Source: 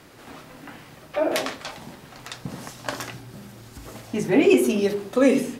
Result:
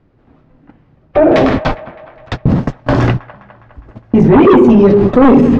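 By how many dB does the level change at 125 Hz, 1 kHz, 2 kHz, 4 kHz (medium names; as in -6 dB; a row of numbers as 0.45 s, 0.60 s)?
+22.5 dB, +17.5 dB, +8.0 dB, +4.0 dB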